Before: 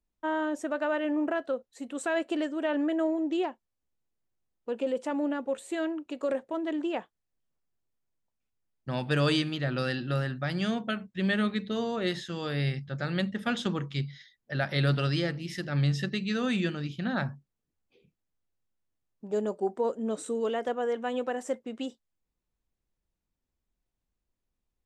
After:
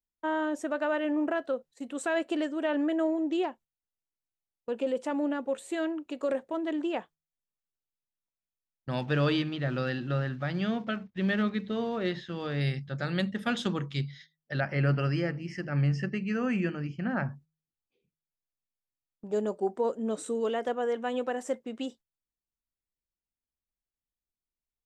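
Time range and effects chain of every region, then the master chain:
9.01–12.61 block floating point 5-bit + air absorption 200 m
14.6–17.31 Butterworth band-stop 3700 Hz, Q 2 + air absorption 120 m
whole clip: gate -50 dBFS, range -14 dB; de-hum 78.82 Hz, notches 2

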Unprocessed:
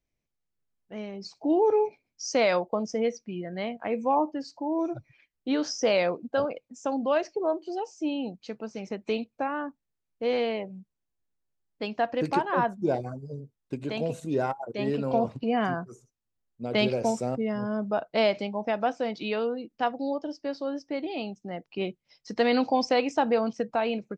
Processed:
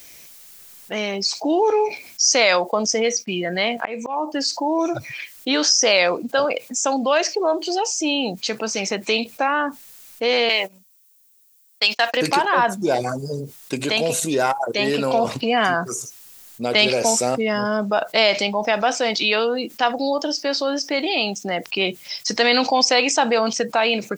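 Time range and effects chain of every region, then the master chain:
3.01–4.34 expander -53 dBFS + auto swell 0.523 s
10.49–12.17 gate -38 dBFS, range -37 dB + tilt +4 dB/oct
whole clip: tilt +4 dB/oct; fast leveller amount 50%; gain +6.5 dB

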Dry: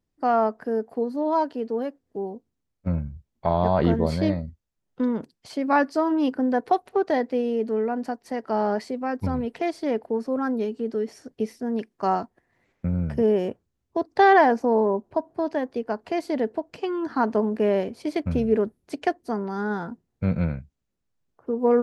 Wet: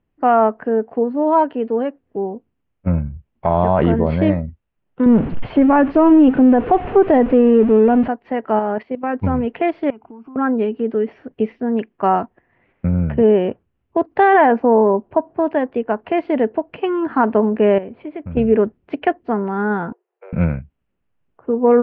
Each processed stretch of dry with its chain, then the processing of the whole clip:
5.06–8.08 zero-crossing step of -32.5 dBFS + tilt -3 dB/oct
8.59–9.15 block floating point 7-bit + level quantiser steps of 14 dB
9.9–10.36 high shelf 4300 Hz -8.5 dB + fixed phaser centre 2700 Hz, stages 8 + compressor, threshold -43 dBFS
17.78–18.37 air absorption 310 m + compressor 2:1, threshold -41 dBFS
19.92–20.33 high shelf 2100 Hz -11 dB + compressor 4:1, threshold -33 dBFS + steep high-pass 360 Hz 96 dB/oct
whole clip: Chebyshev low-pass 2900 Hz, order 4; maximiser +12 dB; gain -3.5 dB

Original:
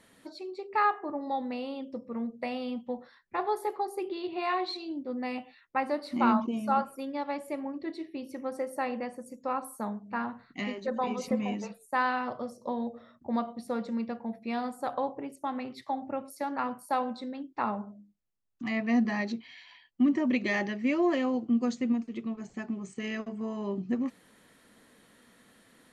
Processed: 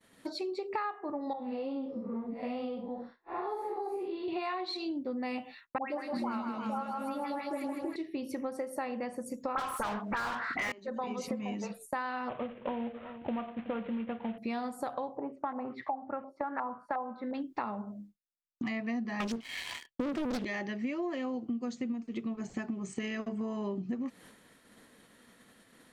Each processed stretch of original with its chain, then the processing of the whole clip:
1.33–4.28 time blur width 0.136 s + high shelf 2400 Hz -10.5 dB + ensemble effect
5.78–7.96 dispersion highs, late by 0.134 s, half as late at 1600 Hz + split-band echo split 480 Hz, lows 0.106 s, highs 0.158 s, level -5.5 dB
9.55–10.72 bell 1600 Hz +14 dB 1.8 oct + overdrive pedal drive 36 dB, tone 2100 Hz, clips at -10 dBFS + dispersion highs, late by 41 ms, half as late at 2300 Hz
12.29–14.38 CVSD 16 kbps + echo 0.372 s -21.5 dB
15.17–17.34 low shelf 140 Hz -8 dB + LFO low-pass saw up 2.8 Hz 800–1900 Hz
19.2–20.45 sample leveller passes 3 + Doppler distortion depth 0.77 ms
whole clip: expander -53 dBFS; compressor 10:1, threshold -40 dBFS; gain +7.5 dB

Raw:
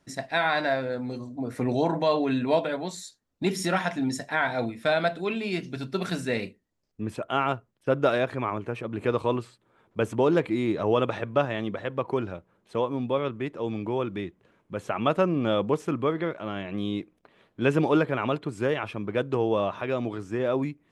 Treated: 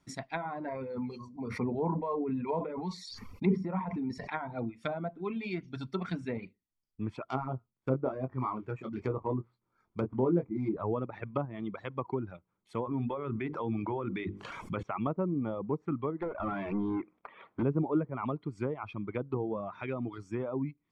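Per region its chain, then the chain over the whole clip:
0.68–4.3 ripple EQ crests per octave 0.86, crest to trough 9 dB + sustainer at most 30 dB/s
7.25–10.77 median filter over 15 samples + doubler 23 ms -5 dB
12.85–14.83 tilt shelf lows -3.5 dB, about 1100 Hz + notches 50/100/150/200/250/300/350/400/450/500 Hz + fast leveller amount 70%
16.22–17.63 LPF 2400 Hz + overdrive pedal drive 27 dB, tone 1500 Hz, clips at -17.5 dBFS
whole clip: reverb removal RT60 1 s; treble ducked by the level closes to 680 Hz, closed at -22.5 dBFS; comb 0.9 ms, depth 45%; gain -5 dB

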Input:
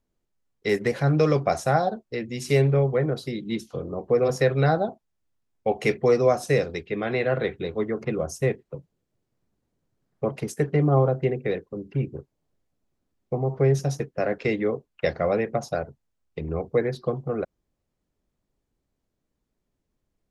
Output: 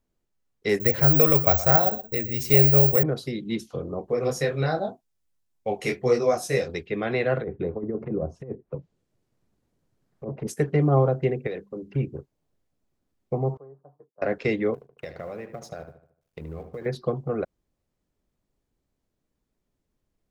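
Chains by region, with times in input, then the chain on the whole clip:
0.8–3.03 resonant low shelf 110 Hz +14 dB, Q 1.5 + echo 0.121 s -15 dB + careless resampling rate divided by 2×, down filtered, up zero stuff
4.06–6.68 high shelf 4200 Hz +8.5 dB + detuned doubles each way 31 cents
7.41–10.47 treble ducked by the level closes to 590 Hz, closed at -24 dBFS + negative-ratio compressor -28 dBFS, ratio -0.5
11.47–11.96 bell 110 Hz -9 dB 0.86 oct + notches 50/100/150/200 Hz + compressor 4:1, threshold -28 dBFS
13.57–14.22 elliptic low-pass 1100 Hz, stop band 60 dB + differentiator + comb 6.7 ms, depth 33%
14.74–16.86 G.711 law mismatch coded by A + compressor, threshold -33 dBFS + darkening echo 75 ms, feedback 44%, low-pass 3700 Hz, level -10.5 dB
whole clip: dry

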